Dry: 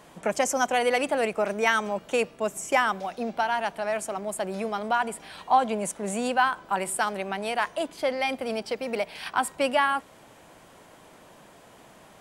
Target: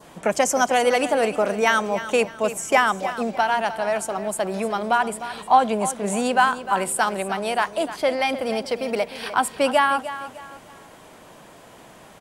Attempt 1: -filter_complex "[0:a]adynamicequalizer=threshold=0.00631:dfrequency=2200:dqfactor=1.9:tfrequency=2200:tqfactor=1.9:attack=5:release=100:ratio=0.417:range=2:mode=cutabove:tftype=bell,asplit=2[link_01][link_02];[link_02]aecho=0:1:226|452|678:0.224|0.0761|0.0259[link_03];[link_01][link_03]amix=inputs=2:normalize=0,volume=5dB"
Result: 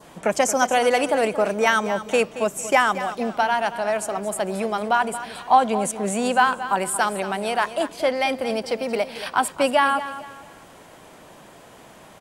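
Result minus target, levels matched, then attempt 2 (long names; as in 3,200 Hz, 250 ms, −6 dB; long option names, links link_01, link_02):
echo 77 ms early
-filter_complex "[0:a]adynamicequalizer=threshold=0.00631:dfrequency=2200:dqfactor=1.9:tfrequency=2200:tqfactor=1.9:attack=5:release=100:ratio=0.417:range=2:mode=cutabove:tftype=bell,asplit=2[link_01][link_02];[link_02]aecho=0:1:303|606|909:0.224|0.0761|0.0259[link_03];[link_01][link_03]amix=inputs=2:normalize=0,volume=5dB"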